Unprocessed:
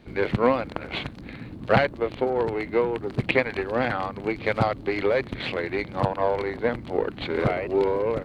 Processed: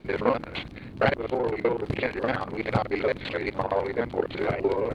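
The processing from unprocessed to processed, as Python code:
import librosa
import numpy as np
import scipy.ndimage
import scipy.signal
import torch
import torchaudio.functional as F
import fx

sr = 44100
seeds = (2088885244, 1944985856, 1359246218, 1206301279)

y = fx.local_reverse(x, sr, ms=41.0)
y = fx.stretch_grains(y, sr, factor=0.6, grain_ms=118.0)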